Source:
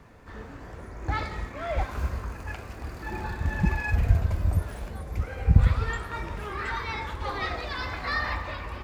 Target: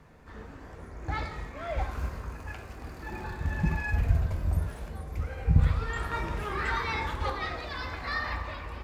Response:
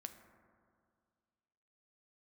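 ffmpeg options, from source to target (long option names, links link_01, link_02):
-filter_complex "[0:a]asettb=1/sr,asplit=3[link_01][link_02][link_03];[link_01]atrim=end=5.964[link_04];[link_02]atrim=start=5.96:end=7.3,asetpts=PTS-STARTPTS,afade=type=in:duration=0.004:curve=qsin,afade=type=out:start_time=1.336:duration=0.004:curve=qsin,acontrast=27[link_05];[link_03]atrim=start=7.296[link_06];[link_04][link_05]acrossfade=duration=0.004:curve1=hsin:curve2=qsin[link_07];[link_07][link_06]acrossfade=duration=0.004:curve1=qsin:curve2=hsin[link_08];[1:a]atrim=start_sample=2205,atrim=end_sample=3528,asetrate=31311,aresample=44100[link_09];[link_08][link_09]afir=irnorm=-1:irlink=0"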